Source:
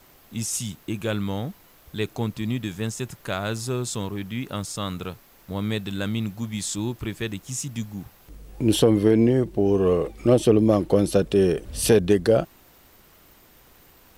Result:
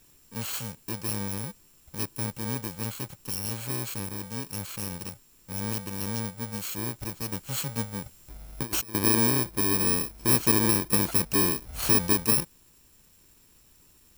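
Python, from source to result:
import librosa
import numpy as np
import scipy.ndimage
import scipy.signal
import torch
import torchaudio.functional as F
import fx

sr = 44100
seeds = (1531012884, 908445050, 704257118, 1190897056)

y = fx.bit_reversed(x, sr, seeds[0], block=64)
y = fx.over_compress(y, sr, threshold_db=-25.0, ratio=-0.5, at=(7.32, 8.95))
y = F.gain(torch.from_numpy(y), -5.0).numpy()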